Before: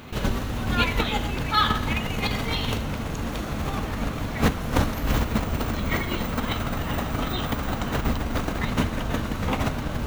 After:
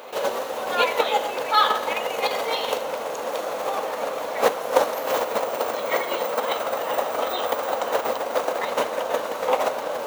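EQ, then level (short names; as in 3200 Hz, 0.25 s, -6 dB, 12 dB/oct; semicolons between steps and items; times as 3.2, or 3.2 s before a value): resonant high-pass 520 Hz, resonance Q 4.9; bell 910 Hz +6.5 dB 0.97 oct; high shelf 4100 Hz +6.5 dB; -2.5 dB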